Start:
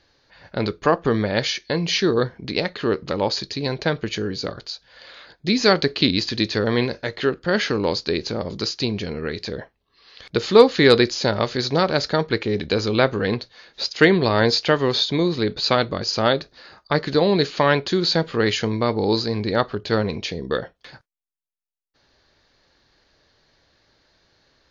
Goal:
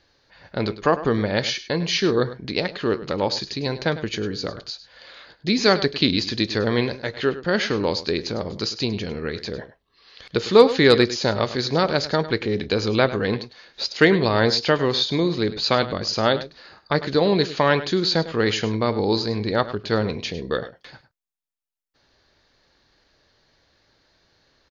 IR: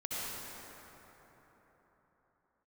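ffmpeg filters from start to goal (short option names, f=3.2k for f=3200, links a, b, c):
-af "aecho=1:1:102:0.188,volume=-1dB"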